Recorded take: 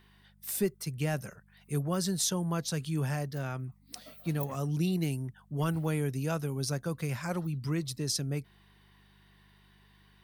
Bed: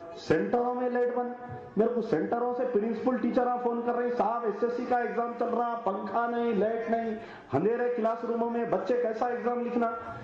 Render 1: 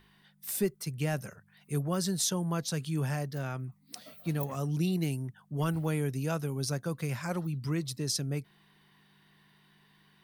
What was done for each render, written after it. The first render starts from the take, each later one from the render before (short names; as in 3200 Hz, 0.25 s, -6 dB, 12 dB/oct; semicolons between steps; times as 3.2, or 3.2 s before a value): de-hum 50 Hz, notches 2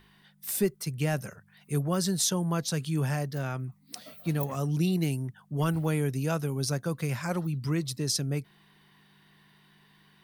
gain +3 dB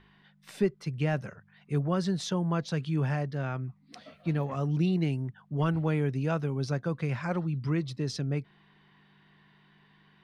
LPF 3100 Hz 12 dB/oct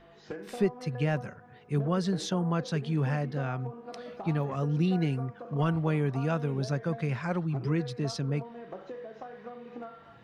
add bed -14.5 dB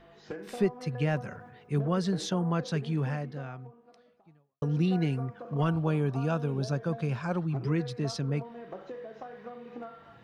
1.26–1.73 sustainer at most 54 dB/s; 2.84–4.62 fade out quadratic; 5.69–7.38 bell 2000 Hz -14 dB 0.21 oct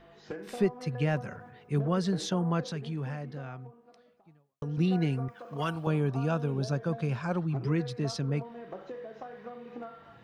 2.65–4.78 compressor 2:1, threshold -35 dBFS; 5.28–5.87 tilt +3 dB/oct